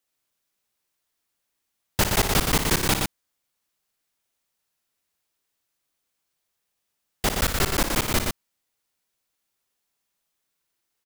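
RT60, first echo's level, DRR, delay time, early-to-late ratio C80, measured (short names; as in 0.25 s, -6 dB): none, -8.0 dB, none, 58 ms, none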